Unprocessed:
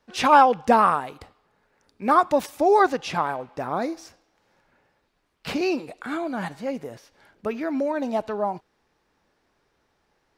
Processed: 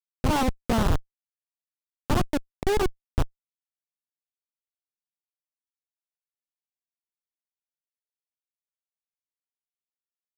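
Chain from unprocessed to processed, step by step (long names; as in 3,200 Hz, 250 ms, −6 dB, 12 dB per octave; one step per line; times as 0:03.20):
comparator with hysteresis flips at −14 dBFS
low-shelf EQ 440 Hz +7 dB
highs frequency-modulated by the lows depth 0.54 ms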